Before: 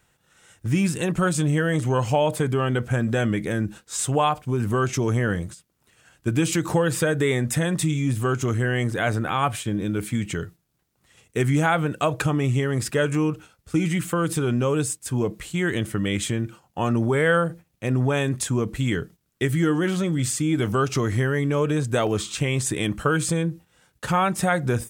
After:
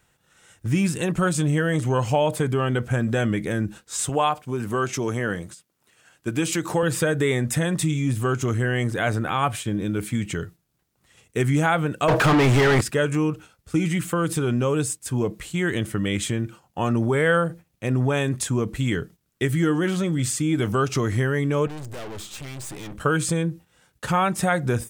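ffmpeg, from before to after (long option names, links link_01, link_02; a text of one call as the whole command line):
ffmpeg -i in.wav -filter_complex "[0:a]asettb=1/sr,asplit=3[link_01][link_02][link_03];[link_01]atrim=end=4.094[link_04];[link_02]atrim=start=4.09:end=6.83,asetpts=PTS-STARTPTS,afade=type=in:duration=0.004:curve=qsin,afade=type=out:start_time=2.736:duration=0.004:curve=qsin,highpass=frequency=230:poles=1[link_05];[link_03]atrim=start=6.826[link_06];[link_04][link_05]acrossfade=duration=0.004:curve1=hsin:curve2=qsin[link_07];[link_07][link_06]acrossfade=duration=0.004:curve1=qsin:curve2=hsin,asettb=1/sr,asplit=3[link_08][link_09][link_10];[link_08]atrim=end=12.084[link_11];[link_09]atrim=start=12.08:end=12.81,asetpts=PTS-STARTPTS,afade=type=in:duration=0.004:curve=qsin,afade=type=out:start_time=0.726:duration=0.004:curve=qsin,asplit=2[link_12][link_13];[link_13]highpass=frequency=720:poles=1,volume=36dB,asoftclip=type=tanh:threshold=-10dB[link_14];[link_12][link_14]amix=inputs=2:normalize=0,lowpass=frequency=1900:poles=1,volume=-6dB[link_15];[link_10]atrim=start=12.806[link_16];[link_11][link_15]acrossfade=duration=0.004:curve1=hsin:curve2=qsin[link_17];[link_17][link_16]acrossfade=duration=0.004:curve1=qsin:curve2=hsin,asettb=1/sr,asplit=3[link_18][link_19][link_20];[link_18]atrim=end=21.674[link_21];[link_19]atrim=start=21.67:end=23.01,asetpts=PTS-STARTPTS,afade=type=in:duration=0.004:curve=qsin,afade=type=out:start_time=1.336:duration=0.004:curve=qsin,aeval=exprs='(tanh(50.1*val(0)+0.7)-tanh(0.7))/50.1':channel_layout=same[link_22];[link_20]atrim=start=23.006[link_23];[link_21][link_22]acrossfade=duration=0.004:curve1=hsin:curve2=qsin[link_24];[link_24][link_23]acrossfade=duration=0.004:curve1=qsin:curve2=hsin" out.wav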